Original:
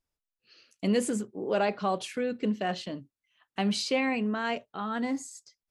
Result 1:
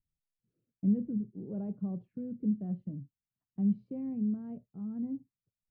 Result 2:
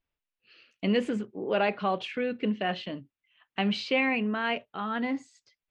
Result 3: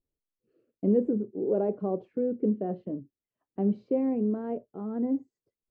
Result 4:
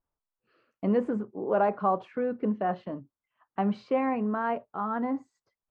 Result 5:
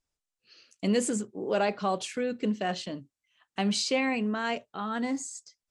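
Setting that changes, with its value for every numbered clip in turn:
synth low-pass, frequency: 160, 2800, 410, 1100, 7900 Hz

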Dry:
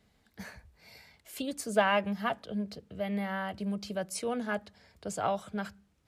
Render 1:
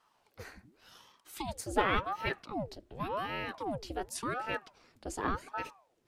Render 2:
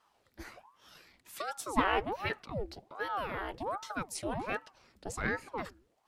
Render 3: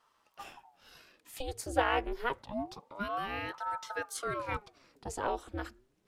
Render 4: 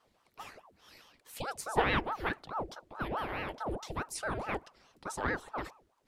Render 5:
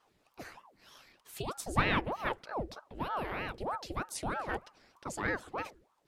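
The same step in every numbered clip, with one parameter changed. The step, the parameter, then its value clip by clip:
ring modulator with a swept carrier, at: 0.89, 1.3, 0.27, 4.7, 3.2 Hz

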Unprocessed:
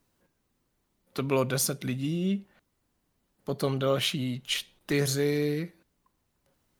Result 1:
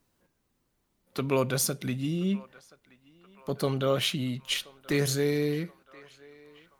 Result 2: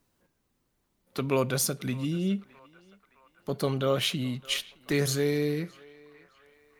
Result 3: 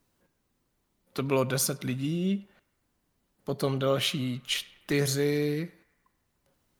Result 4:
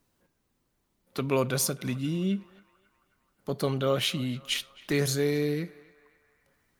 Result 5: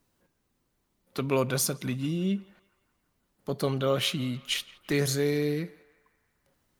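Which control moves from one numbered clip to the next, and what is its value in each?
narrowing echo, time: 1.027, 0.615, 0.101, 0.266, 0.17 s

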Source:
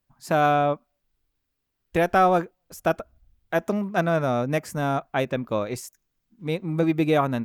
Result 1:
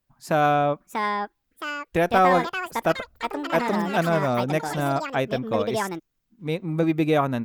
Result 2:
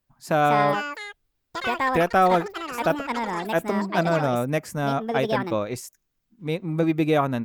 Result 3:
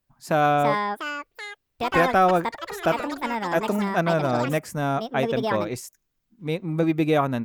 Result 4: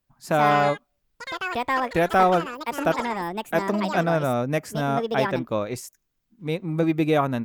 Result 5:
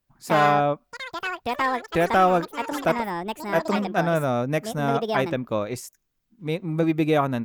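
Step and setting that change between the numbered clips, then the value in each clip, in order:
echoes that change speed, time: 732, 286, 426, 171, 80 ms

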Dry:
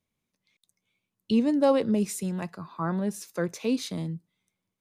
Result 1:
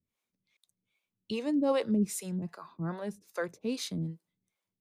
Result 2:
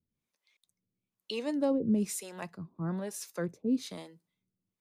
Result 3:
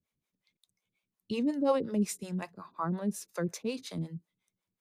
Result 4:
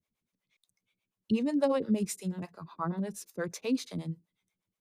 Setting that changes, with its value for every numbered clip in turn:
harmonic tremolo, rate: 2.5, 1.1, 5.5, 8.3 Hz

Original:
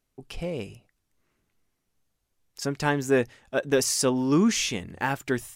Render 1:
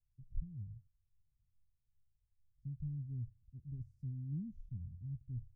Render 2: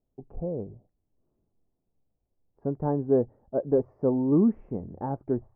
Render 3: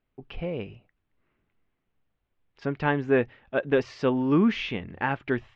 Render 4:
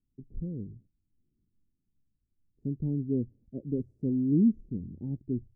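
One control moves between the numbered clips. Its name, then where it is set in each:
inverse Chebyshev low-pass, stop band from: 520, 3400, 11000, 1300 Hz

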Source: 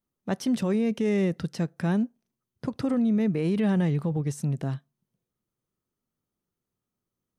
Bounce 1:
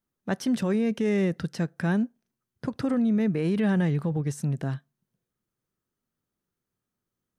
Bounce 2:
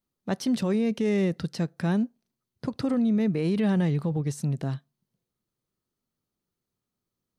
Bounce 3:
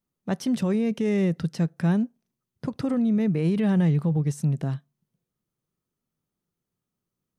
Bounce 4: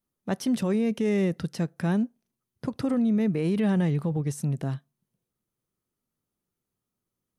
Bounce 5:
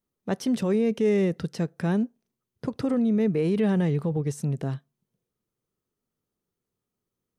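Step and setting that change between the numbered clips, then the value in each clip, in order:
bell, frequency: 1600, 4300, 160, 11000, 440 Hz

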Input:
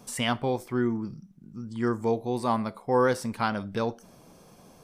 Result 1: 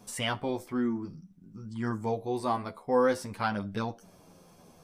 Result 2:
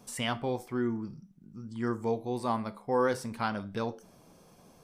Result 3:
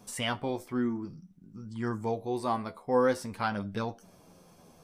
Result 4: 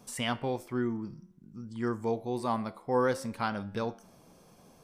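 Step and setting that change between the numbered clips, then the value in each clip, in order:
flange, regen: +3, -81, +34, +91%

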